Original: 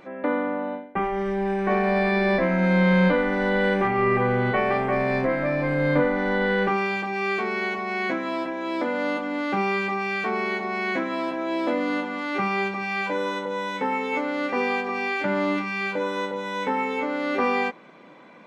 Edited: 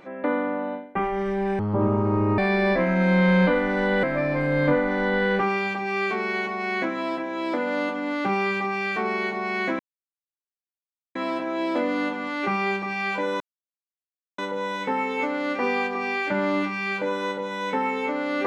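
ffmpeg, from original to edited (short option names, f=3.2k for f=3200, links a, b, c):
-filter_complex "[0:a]asplit=6[a][b][c][d][e][f];[a]atrim=end=1.594[g];[b]atrim=start=1.59:end=2.01,asetpts=PTS-STARTPTS,asetrate=23373,aresample=44100,atrim=end_sample=34947,asetpts=PTS-STARTPTS[h];[c]atrim=start=2.006:end=3.662[i];[d]atrim=start=5.308:end=11.07,asetpts=PTS-STARTPTS,afade=t=out:st=5.758:d=0.004:c=hsin,apad=pad_dur=1.36[j];[e]atrim=start=11.07:end=13.32,asetpts=PTS-STARTPTS,afade=t=in:d=0.004:c=hsin,afade=t=out:st=2.246:d=0.004:c=hsin,apad=pad_dur=0.98[k];[f]atrim=start=13.32,asetpts=PTS-STARTPTS,afade=t=in:d=0.004:c=hsin[l];[g][h]acrossfade=d=0.004:c1=hsin:c2=hsin[m];[m][i]acrossfade=d=0.004:c1=hsin:c2=hsin[n];[j][k][l]concat=n=3:v=0:a=1[o];[n][o]acrossfade=d=0.004:c1=hsin:c2=hsin"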